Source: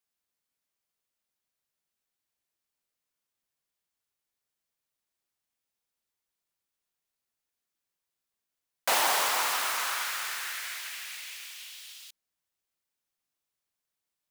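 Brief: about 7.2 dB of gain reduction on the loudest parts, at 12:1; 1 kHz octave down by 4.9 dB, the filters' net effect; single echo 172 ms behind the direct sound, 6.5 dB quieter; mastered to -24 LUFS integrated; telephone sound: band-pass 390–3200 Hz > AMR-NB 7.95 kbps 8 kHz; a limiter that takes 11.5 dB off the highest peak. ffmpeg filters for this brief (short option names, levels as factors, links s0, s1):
-af "equalizer=f=1000:t=o:g=-6,acompressor=threshold=0.0316:ratio=12,alimiter=level_in=1.78:limit=0.0631:level=0:latency=1,volume=0.562,highpass=390,lowpass=3200,aecho=1:1:172:0.473,volume=10" -ar 8000 -c:a libopencore_amrnb -b:a 7950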